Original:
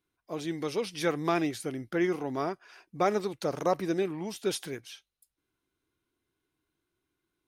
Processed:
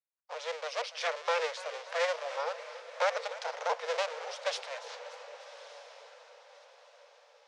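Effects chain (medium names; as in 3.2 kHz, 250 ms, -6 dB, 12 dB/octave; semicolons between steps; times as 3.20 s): cycle switcher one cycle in 2, inverted; low-pass 6.3 kHz 24 dB/octave; gate with hold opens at -49 dBFS; Chebyshev high-pass 470 Hz, order 8; dynamic bell 780 Hz, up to -4 dB, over -45 dBFS, Q 2.7; on a send: echo that smears into a reverb 1195 ms, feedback 40%, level -14 dB; on the sum: modulated delay 289 ms, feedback 61%, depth 148 cents, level -16.5 dB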